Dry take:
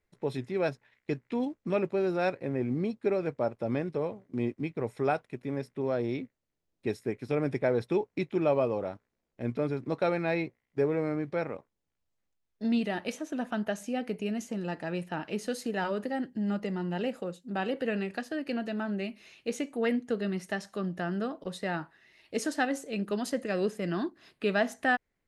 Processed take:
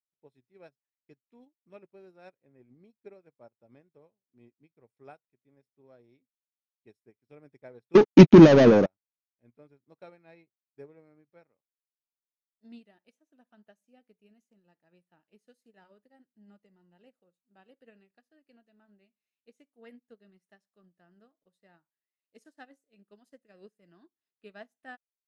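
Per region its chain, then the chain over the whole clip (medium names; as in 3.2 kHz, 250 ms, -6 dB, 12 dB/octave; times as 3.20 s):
7.95–8.86 s: waveshaping leveller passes 5 + brick-wall FIR low-pass 6.8 kHz + peaking EQ 210 Hz +12.5 dB 1.7 oct
whole clip: treble shelf 10 kHz +10 dB; upward expansion 2.5:1, over -38 dBFS; trim +3.5 dB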